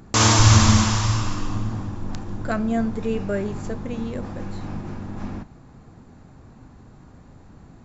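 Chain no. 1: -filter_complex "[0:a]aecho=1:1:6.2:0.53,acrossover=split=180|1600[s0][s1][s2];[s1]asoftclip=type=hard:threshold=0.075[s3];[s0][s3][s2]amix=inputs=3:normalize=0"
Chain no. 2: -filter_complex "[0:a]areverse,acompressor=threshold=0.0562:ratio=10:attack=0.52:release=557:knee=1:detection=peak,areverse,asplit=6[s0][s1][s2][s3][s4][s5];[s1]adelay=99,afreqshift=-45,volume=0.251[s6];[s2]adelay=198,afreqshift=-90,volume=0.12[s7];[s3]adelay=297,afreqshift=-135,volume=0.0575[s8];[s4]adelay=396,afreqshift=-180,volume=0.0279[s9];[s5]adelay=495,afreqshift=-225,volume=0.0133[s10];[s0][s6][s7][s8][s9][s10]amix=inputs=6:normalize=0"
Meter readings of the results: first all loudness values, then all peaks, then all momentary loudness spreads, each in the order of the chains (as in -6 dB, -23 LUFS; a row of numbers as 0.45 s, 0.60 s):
-23.0 LUFS, -33.5 LUFS; -1.5 dBFS, -20.5 dBFS; 18 LU, 16 LU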